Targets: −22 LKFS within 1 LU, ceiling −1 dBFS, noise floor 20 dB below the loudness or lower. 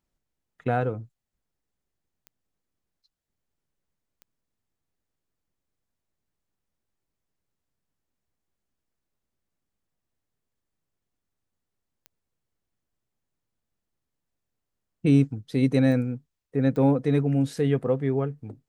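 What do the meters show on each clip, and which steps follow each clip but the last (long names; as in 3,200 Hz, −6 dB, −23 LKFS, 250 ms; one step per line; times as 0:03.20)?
number of clicks 5; integrated loudness −24.5 LKFS; sample peak −8.5 dBFS; target loudness −22.0 LKFS
→ click removal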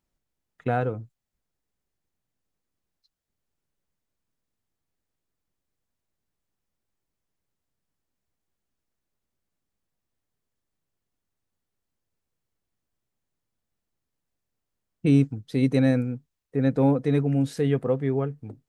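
number of clicks 0; integrated loudness −24.5 LKFS; sample peak −8.5 dBFS; target loudness −22.0 LKFS
→ level +2.5 dB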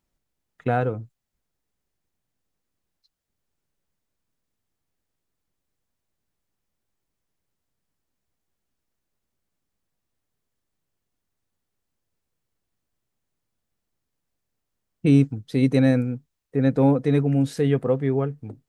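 integrated loudness −22.0 LKFS; sample peak −6.0 dBFS; background noise floor −81 dBFS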